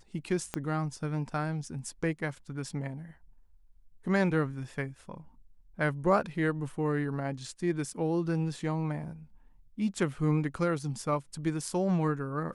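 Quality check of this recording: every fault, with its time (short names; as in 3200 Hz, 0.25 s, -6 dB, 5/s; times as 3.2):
0.54 pop -17 dBFS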